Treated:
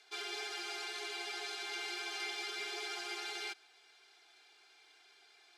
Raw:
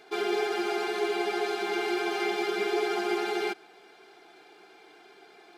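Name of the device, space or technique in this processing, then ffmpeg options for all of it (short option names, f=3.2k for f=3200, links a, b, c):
piezo pickup straight into a mixer: -af "lowpass=6.7k,aderivative,volume=3dB"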